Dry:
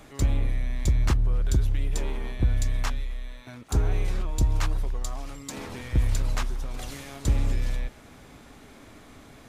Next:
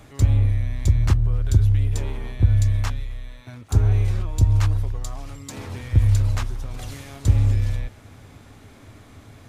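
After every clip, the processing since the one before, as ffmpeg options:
ffmpeg -i in.wav -af "equalizer=frequency=99:width_type=o:width=0.56:gain=15" out.wav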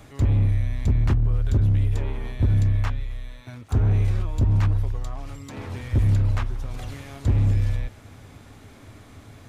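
ffmpeg -i in.wav -filter_complex "[0:a]acrossover=split=3300[link_01][link_02];[link_01]asoftclip=type=hard:threshold=-14.5dB[link_03];[link_02]acompressor=threshold=-51dB:ratio=6[link_04];[link_03][link_04]amix=inputs=2:normalize=0" out.wav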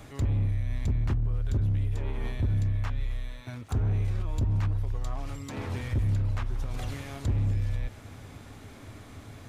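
ffmpeg -i in.wav -af "alimiter=limit=-21.5dB:level=0:latency=1:release=151" out.wav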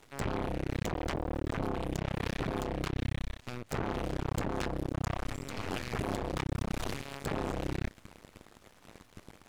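ffmpeg -i in.wav -af "aeval=exprs='max(val(0),0)':channel_layout=same,aeval=exprs='0.0891*(cos(1*acos(clip(val(0)/0.0891,-1,1)))-cos(1*PI/2))+0.0355*(cos(8*acos(clip(val(0)/0.0891,-1,1)))-cos(8*PI/2))':channel_layout=same" out.wav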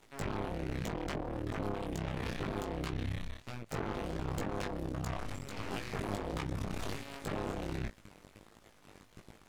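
ffmpeg -i in.wav -af "flanger=delay=17.5:depth=2.9:speed=1.4" out.wav

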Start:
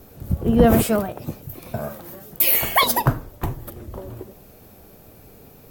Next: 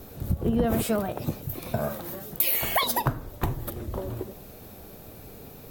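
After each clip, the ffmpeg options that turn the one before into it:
ffmpeg -i in.wav -af "equalizer=frequency=3800:width=5.2:gain=4,acompressor=threshold=-24dB:ratio=5,volume=2dB" out.wav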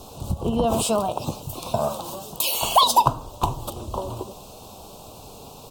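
ffmpeg -i in.wav -af "firequalizer=gain_entry='entry(350,0);entry(1000,14);entry(1900,-23);entry(2700,9);entry(8500,11);entry(12000,-3)':delay=0.05:min_phase=1" out.wav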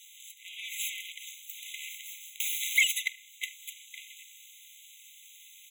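ffmpeg -i in.wav -af "aeval=exprs='abs(val(0))':channel_layout=same,afftfilt=real='re*eq(mod(floor(b*sr/1024/2000),2),1)':imag='im*eq(mod(floor(b*sr/1024/2000),2),1)':win_size=1024:overlap=0.75" out.wav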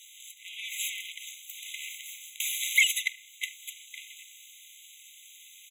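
ffmpeg -i in.wav -af "aresample=32000,aresample=44100,volume=2dB" out.wav

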